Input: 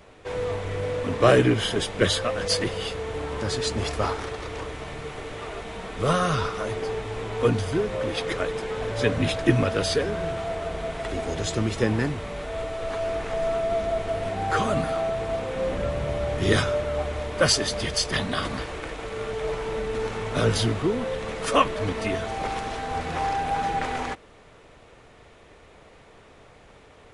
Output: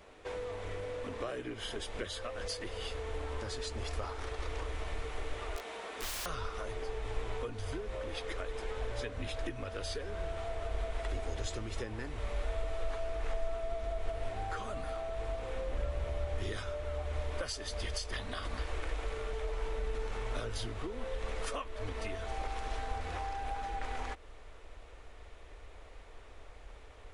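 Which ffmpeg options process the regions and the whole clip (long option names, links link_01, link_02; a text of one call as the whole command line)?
ffmpeg -i in.wav -filter_complex "[0:a]asettb=1/sr,asplit=3[link_01][link_02][link_03];[link_01]atrim=end=5.564[link_04];[link_02]atrim=start=5.56:end=6.26,asetpts=PTS-STARTPTS,afade=type=in:duration=0.004:curve=qsin,afade=type=out:start_time=0.696:duration=0.004:curve=qsin,highpass=290,aeval=exprs='(mod(20*val(0)+1,2)-1)/20':channel_layout=same[link_05];[link_03]atrim=start=6.256[link_06];[link_04][link_05]acrossfade=duration=0.004:curve1=hsin:curve2=qsin[link_07];[link_07][link_06]acrossfade=duration=0.004:curve1=qsin:curve2=hsin,equalizer=frequency=140:width_type=o:width=1:gain=-8,acompressor=threshold=-32dB:ratio=6,asubboost=boost=6.5:cutoff=63,volume=-5dB" out.wav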